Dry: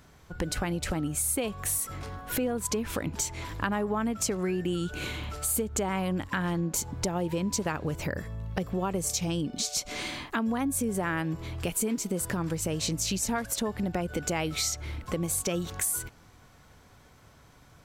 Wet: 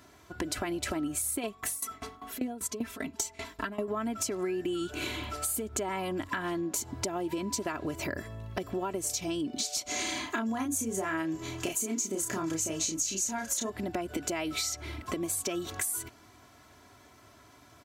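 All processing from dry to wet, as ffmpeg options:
-filter_complex "[0:a]asettb=1/sr,asplit=3[a][b][c];[a]atrim=end=1.434[d];[b]atrim=start=1.43:end=3.88,asetpts=PTS-STARTPTS,afade=t=in:d=0.004:c=qsin,afade=t=out:st=2.446:d=0.004:c=qsin,aecho=1:1:4.5:0.94,atrim=end_sample=108045,aeval=exprs='val(0)*pow(10,-19*if(lt(mod(5.1*n/s,1),2*abs(5.1)/1000),1-mod(5.1*n/s,1)/(2*abs(5.1)/1000),(mod(5.1*n/s,1)-2*abs(5.1)/1000)/(1-2*abs(5.1)/1000))/20)':c=same[e];[c]atrim=start=3.876[f];[d][e]acrossfade=d=0.004:c1=hsin:c2=qsin[g];[g][f]acrossfade=d=0.004:c1=qsin:c2=hsin,asettb=1/sr,asplit=3[h][i][j];[h]atrim=end=9.874[k];[i]atrim=start=9.87:end=13.7,asetpts=PTS-STARTPTS,afade=t=in:d=0.004:c=qsin,afade=t=out:st=3.826:d=0.004:c=qsin,equalizer=f=6.6k:t=o:w=0.28:g=14,asplit=2[l][m];[m]adelay=31,volume=-4dB[n];[l][n]amix=inputs=2:normalize=0,atrim=end_sample=168903[o];[j]atrim=start=13.696[p];[k][o]acrossfade=d=0.004:c1=hsin:c2=qsin[q];[q][p]acrossfade=d=0.004:c1=qsin:c2=hsin,highpass=110,aecho=1:1:3:0.69,acompressor=threshold=-29dB:ratio=6"

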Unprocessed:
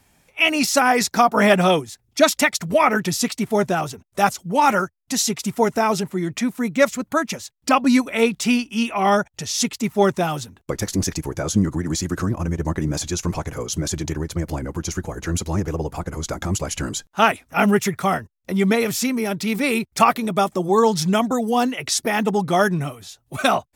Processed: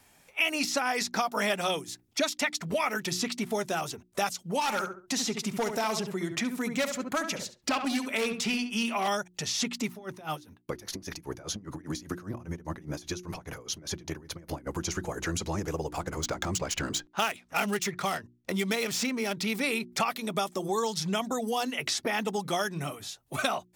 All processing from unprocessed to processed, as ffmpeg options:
-filter_complex "[0:a]asettb=1/sr,asplit=3[a][b][c];[a]atrim=end=4.614[d];[b]atrim=start=4.61:end=9.08,asetpts=PTS-STARTPTS,afade=t=in:d=0.004:c=qsin,afade=t=out:st=4.466:d=0.004:c=qsin,asoftclip=type=hard:threshold=-14dB,asplit=2[e][f];[f]adelay=69,lowpass=f=1.9k:p=1,volume=-7.5dB,asplit=2[g][h];[h]adelay=69,lowpass=f=1.9k:p=1,volume=0.23,asplit=2[i][j];[j]adelay=69,lowpass=f=1.9k:p=1,volume=0.23[k];[e][g][i][k]amix=inputs=4:normalize=0,atrim=end_sample=197127[l];[c]atrim=start=9.076[m];[d][l]acrossfade=d=0.004:c1=hsin:c2=qsin[n];[n][m]acrossfade=d=0.004:c1=qsin:c2=hsin,asettb=1/sr,asplit=3[o][p][q];[o]atrim=end=9.924[r];[p]atrim=start=9.92:end=14.67,asetpts=PTS-STARTPTS,afade=t=in:d=0.004:c=qsin,afade=t=out:st=4.746:d=0.004:c=qsin,equalizer=f=7.6k:t=o:w=0.22:g=-13,acompressor=threshold=-21dB:ratio=5:attack=3.2:release=140:knee=1:detection=peak,aeval=exprs='val(0)*pow(10,-22*(0.5-0.5*cos(2*PI*5*n/s))/20)':c=same[s];[q]atrim=start=14.666[t];[r][s]acrossfade=d=0.004:c1=hsin:c2=qsin[u];[u][t]acrossfade=d=0.004:c1=qsin:c2=hsin,asettb=1/sr,asplit=3[v][w][x];[v]atrim=end=15.894[y];[w]atrim=start=15.89:end=19.35,asetpts=PTS-STARTPTS,afade=t=in:d=0.004:c=qsin,afade=t=out:st=3.456:d=0.004:c=qsin,adynamicsmooth=sensitivity=5.5:basefreq=3.6k,aemphasis=mode=production:type=50fm[z];[x]atrim=start=19.346[aa];[y][z]acrossfade=d=0.004:c1=hsin:c2=qsin[ab];[ab][aa]acrossfade=d=0.004:c1=qsin:c2=hsin,lowshelf=f=220:g=-7.5,bandreject=f=60:t=h:w=6,bandreject=f=120:t=h:w=6,bandreject=f=180:t=h:w=6,bandreject=f=240:t=h:w=6,bandreject=f=300:t=h:w=6,bandreject=f=360:t=h:w=6,acrossover=split=3000|6000[ac][ad][ae];[ac]acompressor=threshold=-29dB:ratio=4[af];[ad]acompressor=threshold=-34dB:ratio=4[ag];[ae]acompressor=threshold=-44dB:ratio=4[ah];[af][ag][ah]amix=inputs=3:normalize=0"

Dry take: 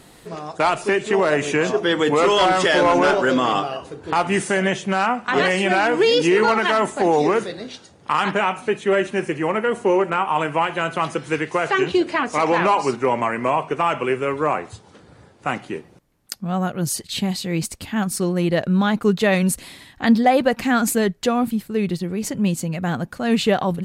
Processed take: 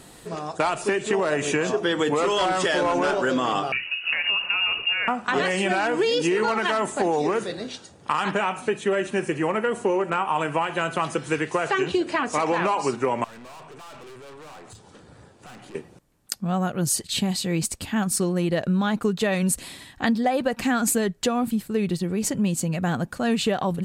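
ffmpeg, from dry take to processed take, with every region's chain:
-filter_complex "[0:a]asettb=1/sr,asplit=3[a][b][c];[a]atrim=end=3.724[d];[b]atrim=start=3.72:end=5.08,asetpts=PTS-STARTPTS,afade=t=in:d=0.004:c=qsin,afade=t=out:st=1.356:d=0.004:c=qsin,equalizer=f=150:w=0.31:g=9,acompressor=threshold=-18dB:ratio=10:attack=3.2:release=140:knee=1:detection=peak,lowpass=f=2.6k:t=q:w=0.5098,lowpass=f=2.6k:t=q:w=0.6013,lowpass=f=2.6k:t=q:w=0.9,lowpass=f=2.6k:t=q:w=2.563,afreqshift=-3000[e];[c]atrim=start=5.076[f];[d][e]acrossfade=d=0.004:c1=hsin:c2=qsin[g];[g][f]acrossfade=d=0.004:c1=qsin:c2=hsin,asettb=1/sr,asplit=3[h][i][j];[h]atrim=end=13.244[k];[i]atrim=start=13.24:end=15.75,asetpts=PTS-STARTPTS,afade=t=in:d=0.004:c=qsin,afade=t=out:st=2.506:d=0.004:c=qsin,aeval=exprs='(tanh(56.2*val(0)+0.35)-tanh(0.35))/56.2':c=same,acompressor=threshold=-41dB:ratio=6:attack=3.2:release=140:knee=1:detection=peak[l];[j]atrim=start=15.746[m];[k][l]acrossfade=d=0.004:c1=hsin:c2=qsin[n];[n][m]acrossfade=d=0.004:c1=qsin:c2=hsin,bandreject=f=2.1k:w=19,acompressor=threshold=-19dB:ratio=6,equalizer=f=8k:w=2.2:g=4.5"

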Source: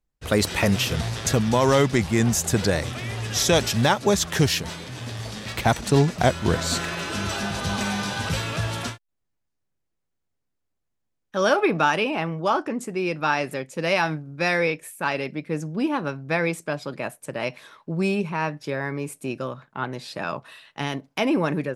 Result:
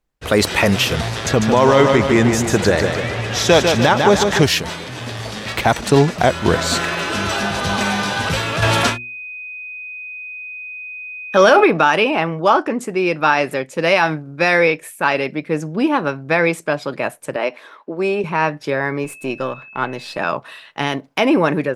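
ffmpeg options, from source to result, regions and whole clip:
-filter_complex "[0:a]asettb=1/sr,asplit=3[a][b][c];[a]atrim=end=1.264[d];[b]atrim=start=1.26:end=4.43,asetpts=PTS-STARTPTS,afade=t=in:d=0.004:c=qsin,afade=t=out:st=3.166:d=0.004:c=qsin,highshelf=f=7.1k:g=-10.5,aecho=1:1:149|298|447|596|745|894:0.501|0.261|0.136|0.0705|0.0366|0.0191,atrim=end_sample=139797[e];[c]atrim=start=4.426[f];[d][e]acrossfade=d=0.004:c1=hsin:c2=qsin[g];[g][f]acrossfade=d=0.004:c1=qsin:c2=hsin,asettb=1/sr,asplit=3[h][i][j];[h]atrim=end=8.624[k];[i]atrim=start=8.62:end=11.64,asetpts=PTS-STARTPTS,afade=t=in:d=0.004:c=qsin,afade=t=out:st=3.016:d=0.004:c=qsin,bandreject=f=60:t=h:w=6,bandreject=f=120:t=h:w=6,bandreject=f=180:t=h:w=6,bandreject=f=240:t=h:w=6,bandreject=f=300:t=h:w=6,bandreject=f=360:t=h:w=6,bandreject=f=420:t=h:w=6,acontrast=85,aeval=exprs='val(0)+0.0141*sin(2*PI*2500*n/s)':c=same[l];[j]atrim=start=11.636[m];[k][l]acrossfade=d=0.004:c1=hsin:c2=qsin[n];[n][m]acrossfade=d=0.004:c1=qsin:c2=hsin,asettb=1/sr,asplit=3[o][p][q];[o]atrim=end=17.364[r];[p]atrim=start=17.36:end=18.24,asetpts=PTS-STARTPTS,afade=t=in:d=0.004:c=qsin,afade=t=out:st=0.876:d=0.004:c=qsin,highpass=f=250:w=0.5412,highpass=f=250:w=1.3066,highshelf=f=2.7k:g=-8.5[s];[q]atrim=start=18.236[t];[r][s]acrossfade=d=0.004:c1=hsin:c2=qsin[u];[u][t]acrossfade=d=0.004:c1=qsin:c2=hsin,asettb=1/sr,asplit=3[v][w][x];[v]atrim=end=19.044[y];[w]atrim=start=19.04:end=20.18,asetpts=PTS-STARTPTS,afade=t=in:d=0.004:c=qsin,afade=t=out:st=1.136:d=0.004:c=qsin,aeval=exprs='if(lt(val(0),0),0.708*val(0),val(0))':c=same,aeval=exprs='val(0)+0.00501*sin(2*PI*2600*n/s)':c=same[z];[x]atrim=start=20.176[aa];[y][z]acrossfade=d=0.004:c1=hsin:c2=qsin[ab];[ab][aa]acrossfade=d=0.004:c1=qsin:c2=hsin,bass=f=250:g=-6,treble=f=4k:g=-5,alimiter=level_in=10dB:limit=-1dB:release=50:level=0:latency=1,volume=-1dB"

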